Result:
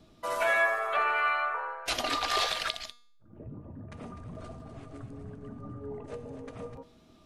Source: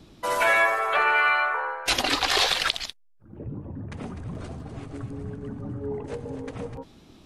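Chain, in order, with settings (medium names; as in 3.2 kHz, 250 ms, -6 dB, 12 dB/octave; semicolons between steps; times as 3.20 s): feedback comb 240 Hz, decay 0.54 s, harmonics all, mix 60%; small resonant body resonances 640/1200 Hz, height 13 dB, ringing for 100 ms; trim -1 dB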